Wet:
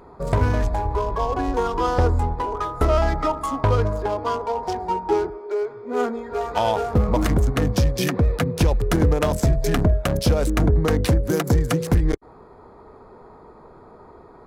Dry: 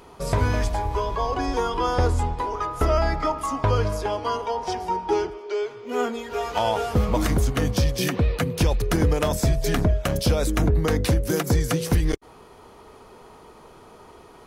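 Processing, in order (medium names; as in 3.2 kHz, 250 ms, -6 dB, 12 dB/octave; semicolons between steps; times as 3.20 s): local Wiener filter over 15 samples; trim +2.5 dB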